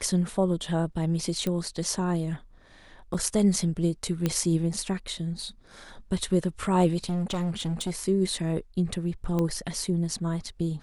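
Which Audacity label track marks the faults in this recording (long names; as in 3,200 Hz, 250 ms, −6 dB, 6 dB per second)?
1.470000	1.470000	click −16 dBFS
3.140000	3.140000	drop-out 4.4 ms
4.260000	4.260000	click −12 dBFS
6.970000	7.910000	clipping −25 dBFS
9.390000	9.390000	click −16 dBFS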